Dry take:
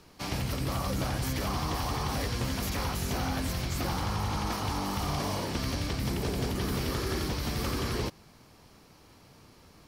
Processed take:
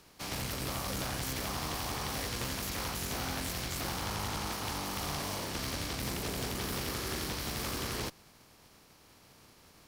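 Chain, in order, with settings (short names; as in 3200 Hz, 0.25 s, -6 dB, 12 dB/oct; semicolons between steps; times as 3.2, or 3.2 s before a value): spectral contrast lowered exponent 0.67; one-sided clip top -33 dBFS; gain -3.5 dB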